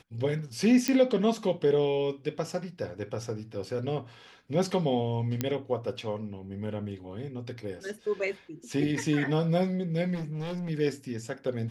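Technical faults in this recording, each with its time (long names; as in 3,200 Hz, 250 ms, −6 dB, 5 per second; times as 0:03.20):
0:00.88: click −12 dBFS
0:05.41: click −13 dBFS
0:10.14–0:10.70: clipping −31 dBFS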